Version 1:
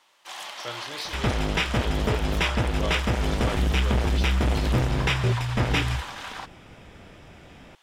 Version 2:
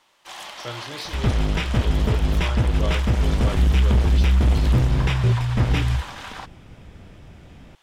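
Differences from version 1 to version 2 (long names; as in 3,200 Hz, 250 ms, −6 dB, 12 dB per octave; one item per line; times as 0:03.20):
second sound −4.0 dB
master: add low-shelf EQ 250 Hz +11.5 dB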